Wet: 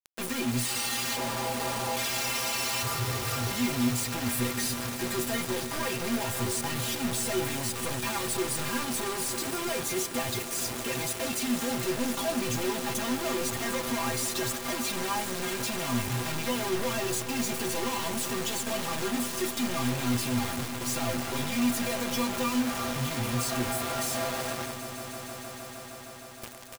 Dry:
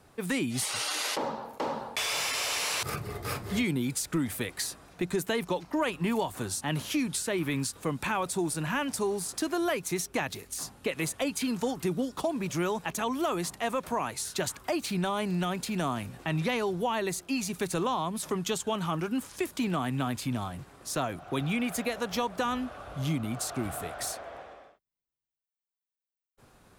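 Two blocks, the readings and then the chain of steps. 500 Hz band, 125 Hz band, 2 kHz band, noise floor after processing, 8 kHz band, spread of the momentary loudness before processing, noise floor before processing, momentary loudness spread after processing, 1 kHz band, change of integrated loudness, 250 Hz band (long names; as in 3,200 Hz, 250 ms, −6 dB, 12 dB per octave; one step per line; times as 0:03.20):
−0.5 dB, +0.5 dB, +1.5 dB, −41 dBFS, +4.0 dB, 6 LU, below −85 dBFS, 4 LU, 0.0 dB, +1.5 dB, +0.5 dB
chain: leveller curve on the samples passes 5
reversed playback
upward compression, threshold −30 dBFS
reversed playback
brickwall limiter −28 dBFS, peak gain reduction 8 dB
stiff-string resonator 120 Hz, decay 0.26 s, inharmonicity 0.008
single-tap delay 1,005 ms −16 dB
bit reduction 7 bits
on a send: echo that builds up and dies away 155 ms, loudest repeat 5, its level −16 dB
on the sum: level +8 dB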